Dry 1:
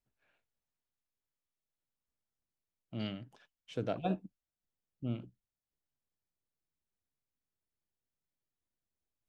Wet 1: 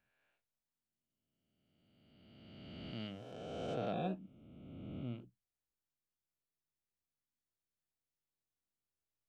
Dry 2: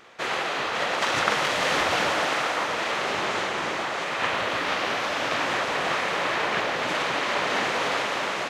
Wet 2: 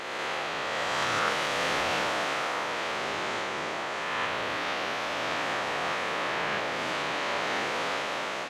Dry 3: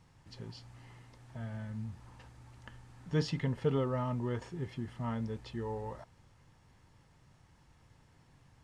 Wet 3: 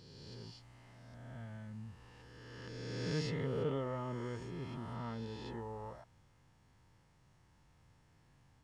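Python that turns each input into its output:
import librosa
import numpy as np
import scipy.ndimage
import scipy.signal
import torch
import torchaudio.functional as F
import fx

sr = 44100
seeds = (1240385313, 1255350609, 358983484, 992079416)

y = fx.spec_swells(x, sr, rise_s=2.21)
y = y * librosa.db_to_amplitude(-8.0)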